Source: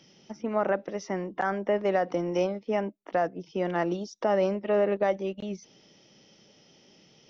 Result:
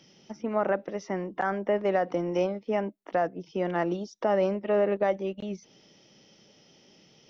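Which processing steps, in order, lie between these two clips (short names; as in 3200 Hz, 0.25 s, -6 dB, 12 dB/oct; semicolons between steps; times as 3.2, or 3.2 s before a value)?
dynamic EQ 5700 Hz, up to -4 dB, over -54 dBFS, Q 0.92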